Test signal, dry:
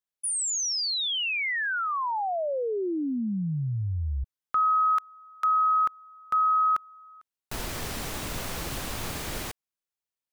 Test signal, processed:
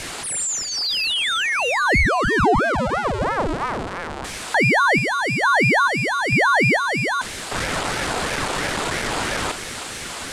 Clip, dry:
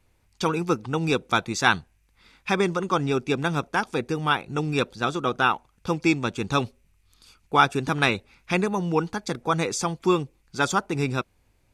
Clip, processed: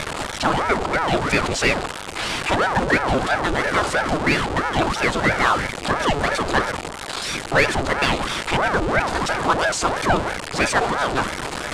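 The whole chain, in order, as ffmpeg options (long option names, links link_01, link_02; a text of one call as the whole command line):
ffmpeg -i in.wav -af "aeval=exprs='val(0)+0.5*0.133*sgn(val(0))':channel_layout=same,highpass=frequency=140:width=0.5412,highpass=frequency=140:width=1.3066,equalizer=frequency=580:width_type=q:width=4:gain=9,equalizer=frequency=1100:width_type=q:width=4:gain=8,equalizer=frequency=5800:width_type=q:width=4:gain=-7,lowpass=frequency=8600:width=0.5412,lowpass=frequency=8600:width=1.3066,acontrast=74,bandreject=frequency=50:width_type=h:width=6,bandreject=frequency=100:width_type=h:width=6,bandreject=frequency=150:width_type=h:width=6,bandreject=frequency=200:width_type=h:width=6,bandreject=frequency=250:width_type=h:width=6,bandreject=frequency=300:width_type=h:width=6,bandreject=frequency=350:width_type=h:width=6,aeval=exprs='val(0)*sin(2*PI*640*n/s+640*0.8/3*sin(2*PI*3*n/s))':channel_layout=same,volume=-5dB" out.wav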